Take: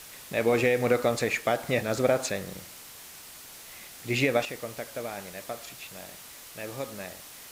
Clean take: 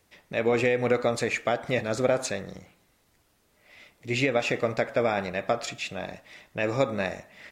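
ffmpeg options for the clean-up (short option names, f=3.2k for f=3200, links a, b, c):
-af "afwtdn=0.0056,asetnsamples=n=441:p=0,asendcmd='4.45 volume volume 11dB',volume=0dB"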